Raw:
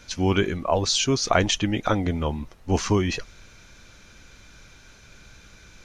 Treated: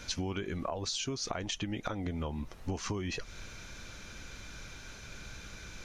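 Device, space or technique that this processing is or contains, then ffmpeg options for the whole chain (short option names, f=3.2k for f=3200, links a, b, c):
serial compression, leveller first: -af "acompressor=threshold=-25dB:ratio=2.5,acompressor=threshold=-35dB:ratio=10,volume=2.5dB"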